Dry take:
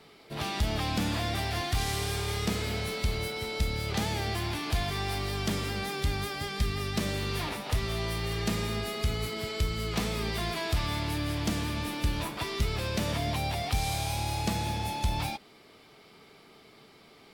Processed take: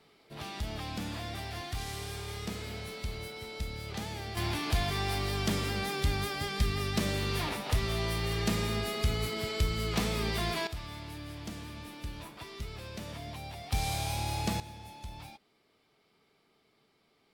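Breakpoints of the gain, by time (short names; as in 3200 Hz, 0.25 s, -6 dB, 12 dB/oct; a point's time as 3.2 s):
-8 dB
from 4.37 s 0 dB
from 10.67 s -11.5 dB
from 13.72 s -2 dB
from 14.6 s -15 dB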